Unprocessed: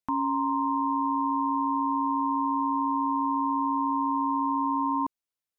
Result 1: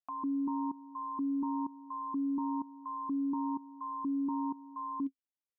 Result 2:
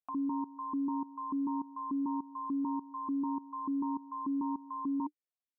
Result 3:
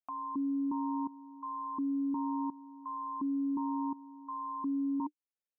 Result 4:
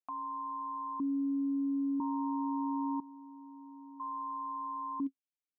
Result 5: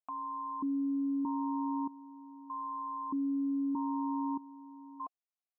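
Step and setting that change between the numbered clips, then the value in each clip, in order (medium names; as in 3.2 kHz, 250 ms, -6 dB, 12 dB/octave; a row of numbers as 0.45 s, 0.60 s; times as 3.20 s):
stepped vowel filter, rate: 4.2 Hz, 6.8 Hz, 2.8 Hz, 1 Hz, 1.6 Hz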